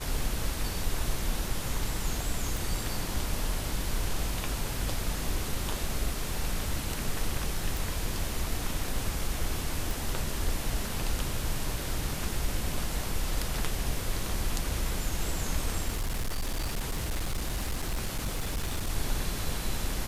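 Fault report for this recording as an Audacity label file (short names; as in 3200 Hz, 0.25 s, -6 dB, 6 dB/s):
2.570000	2.570000	pop
7.770000	7.770000	pop
9.910000	9.910000	pop
15.880000	18.890000	clipped -26.5 dBFS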